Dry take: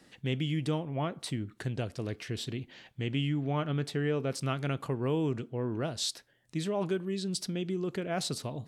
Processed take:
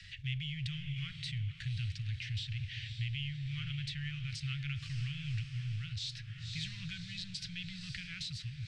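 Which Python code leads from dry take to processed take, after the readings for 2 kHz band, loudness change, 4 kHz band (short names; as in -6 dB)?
-1.5 dB, -6.0 dB, -1.0 dB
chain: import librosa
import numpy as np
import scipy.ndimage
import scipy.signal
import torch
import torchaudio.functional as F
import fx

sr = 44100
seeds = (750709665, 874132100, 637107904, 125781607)

p1 = fx.law_mismatch(x, sr, coded='mu')
p2 = fx.transient(p1, sr, attack_db=0, sustain_db=4)
p3 = scipy.signal.sosfilt(scipy.signal.cheby2(4, 60, [270.0, 890.0], 'bandstop', fs=sr, output='sos'), p2)
p4 = fx.high_shelf(p3, sr, hz=4400.0, db=-10.5)
p5 = p4 + fx.echo_diffused(p4, sr, ms=548, feedback_pct=55, wet_db=-11.0, dry=0)
p6 = fx.rider(p5, sr, range_db=4, speed_s=0.5)
p7 = fx.air_absorb(p6, sr, metres=120.0)
p8 = fx.band_squash(p7, sr, depth_pct=40)
y = p8 * librosa.db_to_amplitude(4.0)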